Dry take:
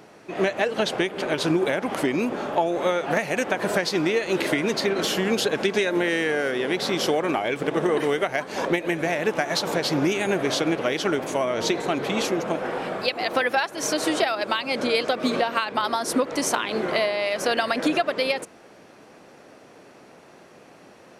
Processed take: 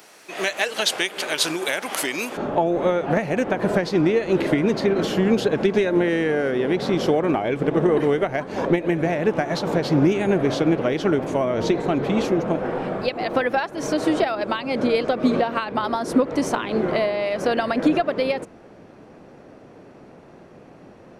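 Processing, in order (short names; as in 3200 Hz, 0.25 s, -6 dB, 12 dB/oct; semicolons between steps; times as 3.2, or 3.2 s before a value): tilt +4 dB/oct, from 2.36 s -3 dB/oct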